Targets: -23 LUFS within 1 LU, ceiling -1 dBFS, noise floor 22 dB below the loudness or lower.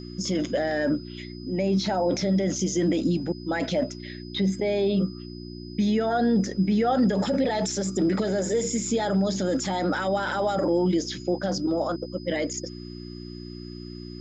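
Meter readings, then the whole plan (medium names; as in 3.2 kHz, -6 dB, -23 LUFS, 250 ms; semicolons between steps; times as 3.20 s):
hum 60 Hz; highest harmonic 360 Hz; hum level -37 dBFS; steady tone 5 kHz; tone level -47 dBFS; loudness -25.5 LUFS; peak level -13.0 dBFS; loudness target -23.0 LUFS
-> de-hum 60 Hz, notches 6; band-stop 5 kHz, Q 30; trim +2.5 dB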